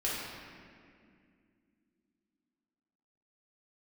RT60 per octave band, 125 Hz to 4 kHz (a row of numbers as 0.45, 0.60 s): 2.9, 3.9, 2.6, 2.0, 2.1, 1.5 s